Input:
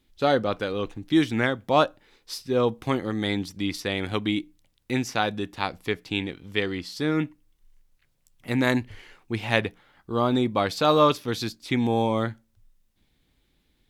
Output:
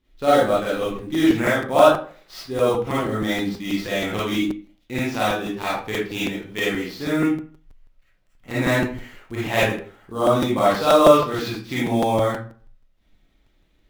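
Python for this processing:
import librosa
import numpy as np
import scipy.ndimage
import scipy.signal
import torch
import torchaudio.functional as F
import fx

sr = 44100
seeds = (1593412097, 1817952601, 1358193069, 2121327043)

p1 = scipy.signal.medfilt(x, 5)
p2 = fx.sample_hold(p1, sr, seeds[0], rate_hz=9500.0, jitter_pct=20)
p3 = p1 + (p2 * librosa.db_to_amplitude(-4.0))
p4 = fx.rev_freeverb(p3, sr, rt60_s=0.44, hf_ratio=0.7, predelay_ms=10, drr_db=-9.5)
p5 = fx.buffer_crackle(p4, sr, first_s=0.66, period_s=0.16, block=256, kind='repeat')
y = p5 * librosa.db_to_amplitude(-8.5)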